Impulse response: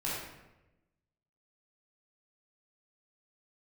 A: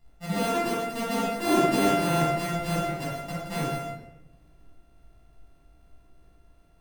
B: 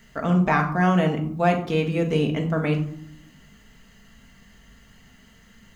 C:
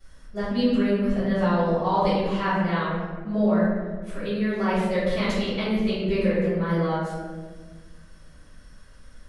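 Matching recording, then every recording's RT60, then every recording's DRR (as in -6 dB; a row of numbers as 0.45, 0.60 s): A; 1.0, 0.70, 1.5 s; -7.0, 1.5, -17.0 dB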